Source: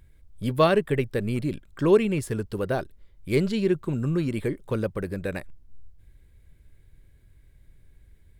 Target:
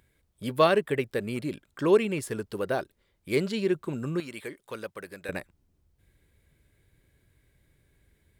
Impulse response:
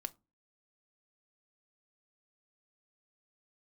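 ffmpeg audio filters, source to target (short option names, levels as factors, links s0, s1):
-af "asetnsamples=n=441:p=0,asendcmd='4.2 highpass f 1400;5.29 highpass f 200',highpass=f=330:p=1"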